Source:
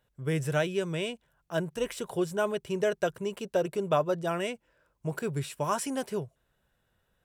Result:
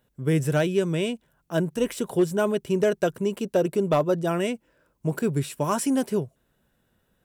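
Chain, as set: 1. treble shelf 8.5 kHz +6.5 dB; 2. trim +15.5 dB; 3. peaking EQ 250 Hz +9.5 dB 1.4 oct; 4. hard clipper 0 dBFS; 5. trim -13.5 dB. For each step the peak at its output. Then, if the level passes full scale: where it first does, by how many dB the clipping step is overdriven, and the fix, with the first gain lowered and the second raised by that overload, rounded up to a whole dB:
-13.5 dBFS, +2.0 dBFS, +4.0 dBFS, 0.0 dBFS, -13.5 dBFS; step 2, 4.0 dB; step 2 +11.5 dB, step 5 -9.5 dB

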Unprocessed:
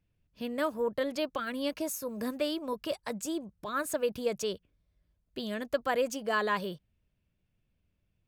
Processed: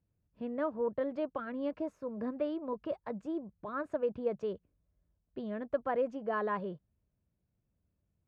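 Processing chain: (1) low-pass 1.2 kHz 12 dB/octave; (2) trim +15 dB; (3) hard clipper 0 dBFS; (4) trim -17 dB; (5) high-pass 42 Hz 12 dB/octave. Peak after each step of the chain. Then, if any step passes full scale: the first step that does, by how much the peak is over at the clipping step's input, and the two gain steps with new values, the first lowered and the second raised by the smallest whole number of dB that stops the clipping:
-17.0 dBFS, -2.0 dBFS, -2.0 dBFS, -19.0 dBFS, -19.0 dBFS; nothing clips

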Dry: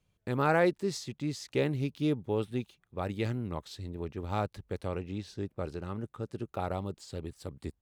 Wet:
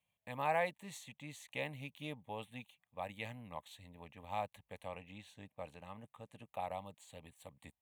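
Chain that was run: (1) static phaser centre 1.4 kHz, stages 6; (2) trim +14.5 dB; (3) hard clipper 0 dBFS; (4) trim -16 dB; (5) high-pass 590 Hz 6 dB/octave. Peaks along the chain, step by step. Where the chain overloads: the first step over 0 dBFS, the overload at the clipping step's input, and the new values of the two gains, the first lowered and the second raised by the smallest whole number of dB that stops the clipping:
-18.0 dBFS, -3.5 dBFS, -3.5 dBFS, -19.5 dBFS, -22.0 dBFS; nothing clips

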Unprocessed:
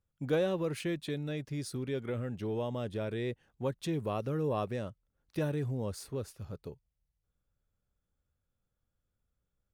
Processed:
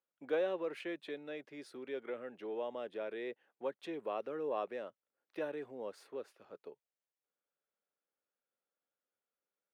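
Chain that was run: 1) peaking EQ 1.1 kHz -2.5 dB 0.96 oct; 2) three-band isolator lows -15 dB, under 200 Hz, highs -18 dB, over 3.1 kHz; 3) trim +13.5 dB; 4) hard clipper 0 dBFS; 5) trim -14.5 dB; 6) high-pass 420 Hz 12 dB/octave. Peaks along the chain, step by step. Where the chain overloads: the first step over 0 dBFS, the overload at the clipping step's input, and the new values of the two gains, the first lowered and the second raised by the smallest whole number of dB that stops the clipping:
-20.0 dBFS, -19.0 dBFS, -5.5 dBFS, -5.5 dBFS, -20.0 dBFS, -24.0 dBFS; nothing clips

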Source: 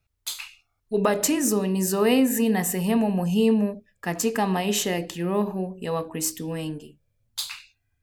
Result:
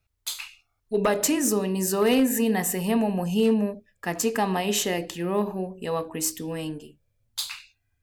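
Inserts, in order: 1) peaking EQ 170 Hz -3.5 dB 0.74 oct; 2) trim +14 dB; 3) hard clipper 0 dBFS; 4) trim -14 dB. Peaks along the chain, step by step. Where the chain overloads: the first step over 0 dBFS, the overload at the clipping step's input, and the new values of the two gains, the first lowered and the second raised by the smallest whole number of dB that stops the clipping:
-6.0 dBFS, +8.0 dBFS, 0.0 dBFS, -14.0 dBFS; step 2, 8.0 dB; step 2 +6 dB, step 4 -6 dB

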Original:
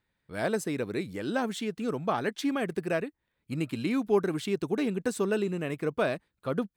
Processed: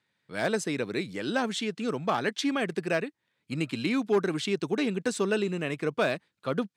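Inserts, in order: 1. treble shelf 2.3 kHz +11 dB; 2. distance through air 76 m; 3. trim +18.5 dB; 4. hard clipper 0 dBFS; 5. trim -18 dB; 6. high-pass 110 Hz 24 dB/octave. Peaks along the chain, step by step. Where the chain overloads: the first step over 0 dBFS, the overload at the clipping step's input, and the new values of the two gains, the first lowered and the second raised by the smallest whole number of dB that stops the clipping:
-12.5 dBFS, -13.5 dBFS, +5.0 dBFS, 0.0 dBFS, -18.0 dBFS, -13.0 dBFS; step 3, 5.0 dB; step 3 +13.5 dB, step 5 -13 dB

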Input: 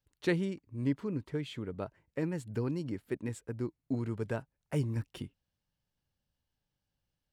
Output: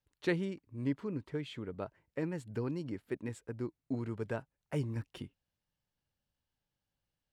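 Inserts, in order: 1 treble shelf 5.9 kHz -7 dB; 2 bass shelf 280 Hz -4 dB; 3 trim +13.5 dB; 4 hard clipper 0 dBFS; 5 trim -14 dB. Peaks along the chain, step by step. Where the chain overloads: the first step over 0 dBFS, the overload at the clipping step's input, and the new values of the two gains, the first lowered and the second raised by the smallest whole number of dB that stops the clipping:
-19.0 dBFS, -19.0 dBFS, -5.5 dBFS, -5.5 dBFS, -19.5 dBFS; nothing clips

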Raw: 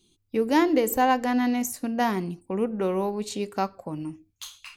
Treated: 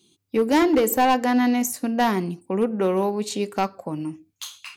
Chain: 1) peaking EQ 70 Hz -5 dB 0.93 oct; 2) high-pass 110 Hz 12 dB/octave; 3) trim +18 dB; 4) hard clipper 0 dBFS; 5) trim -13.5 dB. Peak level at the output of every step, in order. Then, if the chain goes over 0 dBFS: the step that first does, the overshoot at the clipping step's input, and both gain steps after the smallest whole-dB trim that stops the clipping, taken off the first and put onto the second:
-10.0 dBFS, -10.0 dBFS, +8.0 dBFS, 0.0 dBFS, -13.5 dBFS; step 3, 8.0 dB; step 3 +10 dB, step 5 -5.5 dB

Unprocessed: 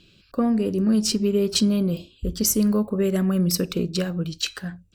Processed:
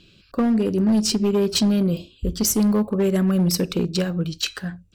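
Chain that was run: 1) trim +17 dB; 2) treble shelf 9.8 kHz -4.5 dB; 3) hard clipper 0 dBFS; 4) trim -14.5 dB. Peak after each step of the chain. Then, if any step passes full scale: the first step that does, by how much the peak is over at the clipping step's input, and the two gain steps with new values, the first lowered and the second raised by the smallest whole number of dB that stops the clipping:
+9.0 dBFS, +8.5 dBFS, 0.0 dBFS, -14.5 dBFS; step 1, 8.5 dB; step 1 +8 dB, step 4 -5.5 dB

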